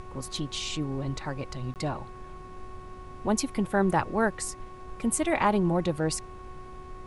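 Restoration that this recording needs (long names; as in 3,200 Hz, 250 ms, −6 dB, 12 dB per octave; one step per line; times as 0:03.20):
hum removal 370.2 Hz, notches 7
notch filter 1,100 Hz, Q 30
repair the gap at 0:01.74, 18 ms
noise reduction from a noise print 30 dB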